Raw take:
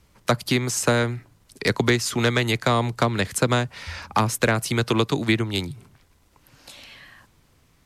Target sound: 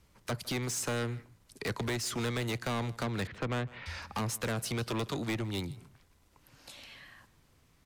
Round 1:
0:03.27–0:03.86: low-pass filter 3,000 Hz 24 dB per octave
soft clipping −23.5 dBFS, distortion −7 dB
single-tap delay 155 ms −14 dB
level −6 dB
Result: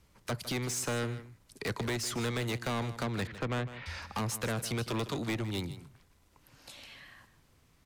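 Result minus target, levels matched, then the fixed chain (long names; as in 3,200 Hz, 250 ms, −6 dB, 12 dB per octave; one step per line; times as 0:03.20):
echo-to-direct +7.5 dB
0:03.27–0:03.86: low-pass filter 3,000 Hz 24 dB per octave
soft clipping −23.5 dBFS, distortion −7 dB
single-tap delay 155 ms −21.5 dB
level −6 dB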